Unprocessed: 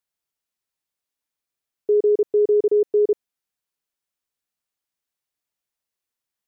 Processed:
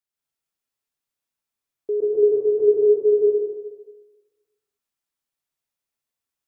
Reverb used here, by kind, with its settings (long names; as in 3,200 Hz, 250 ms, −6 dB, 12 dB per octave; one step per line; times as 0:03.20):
dense smooth reverb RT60 1.3 s, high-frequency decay 0.8×, pre-delay 115 ms, DRR −4.5 dB
level −6 dB